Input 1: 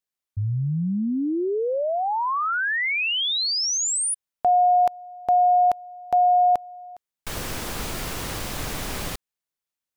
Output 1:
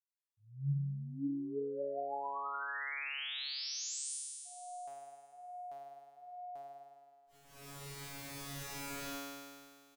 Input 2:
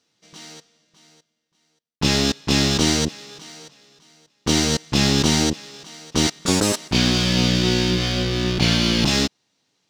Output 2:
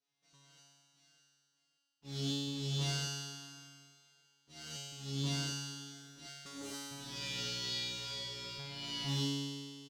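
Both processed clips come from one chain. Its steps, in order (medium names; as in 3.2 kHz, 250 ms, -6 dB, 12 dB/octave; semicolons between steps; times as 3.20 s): Chebyshev shaper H 7 -42 dB, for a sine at -4 dBFS; slow attack 302 ms; gain riding within 4 dB 2 s; feedback comb 140 Hz, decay 2 s, mix 100%; feedback delay 288 ms, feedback 42%, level -22 dB; trim +4 dB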